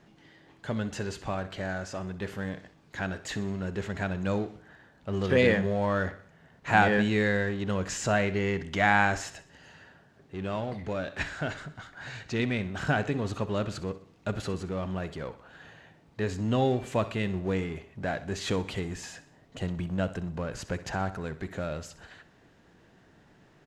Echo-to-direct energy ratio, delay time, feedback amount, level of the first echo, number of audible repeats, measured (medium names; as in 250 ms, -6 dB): -15.0 dB, 63 ms, 49%, -16.0 dB, 4